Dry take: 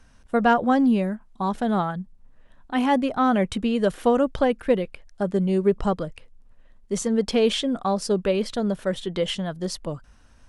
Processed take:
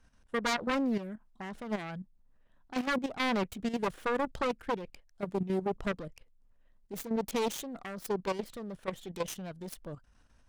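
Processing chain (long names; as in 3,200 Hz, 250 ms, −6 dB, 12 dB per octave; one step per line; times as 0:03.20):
phase distortion by the signal itself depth 0.67 ms
output level in coarse steps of 11 dB
level −7 dB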